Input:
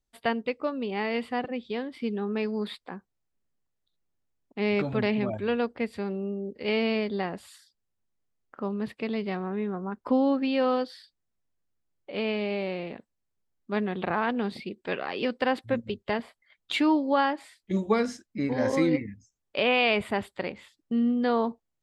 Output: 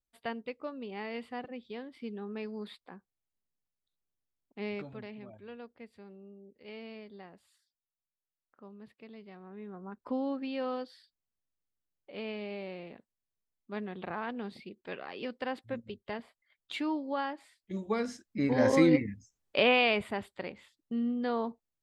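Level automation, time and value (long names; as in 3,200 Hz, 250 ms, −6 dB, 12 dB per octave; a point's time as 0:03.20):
0:04.64 −10 dB
0:05.08 −19.5 dB
0:09.33 −19.5 dB
0:09.90 −10 dB
0:17.76 −10 dB
0:18.57 +1 dB
0:19.57 +1 dB
0:20.15 −7 dB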